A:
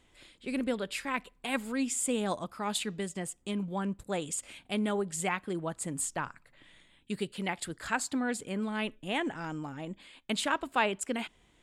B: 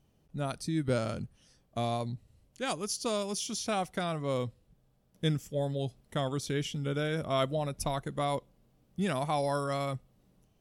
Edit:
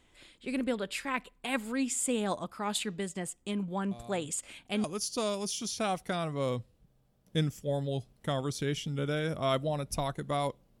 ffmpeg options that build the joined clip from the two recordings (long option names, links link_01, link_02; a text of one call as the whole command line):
ffmpeg -i cue0.wav -i cue1.wav -filter_complex "[1:a]asplit=2[link_01][link_02];[0:a]apad=whole_dur=10.8,atrim=end=10.8,atrim=end=4.842[link_03];[link_02]atrim=start=2.718:end=8.68[link_04];[link_01]atrim=start=1.79:end=2.72,asetpts=PTS-STARTPTS,volume=-17dB,afade=type=in:duration=0.004:curve=hsin,afade=type=out:start_time=0.926:duration=0.004:curve=hsin,adelay=3910[link_05];[link_03][link_04]acrossfade=duration=0.004:curve1=hsin:curve2=hsin[link_06];[link_06][link_05]amix=inputs=2:normalize=0" out.wav